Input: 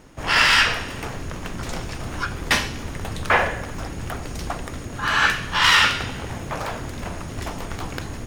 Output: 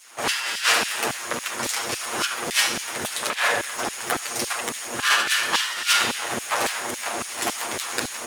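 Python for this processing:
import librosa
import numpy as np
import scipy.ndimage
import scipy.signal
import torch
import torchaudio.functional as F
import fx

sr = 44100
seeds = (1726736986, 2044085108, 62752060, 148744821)

p1 = fx.lower_of_two(x, sr, delay_ms=8.5)
p2 = fx.peak_eq(p1, sr, hz=10000.0, db=7.5, octaves=0.93)
p3 = fx.over_compress(p2, sr, threshold_db=-23.0, ratio=-0.5)
p4 = p3 + fx.echo_single(p3, sr, ms=74, db=-13.0, dry=0)
p5 = fx.filter_lfo_highpass(p4, sr, shape='saw_down', hz=3.6, low_hz=220.0, high_hz=3300.0, q=0.75)
y = p5 * 10.0 ** (5.5 / 20.0)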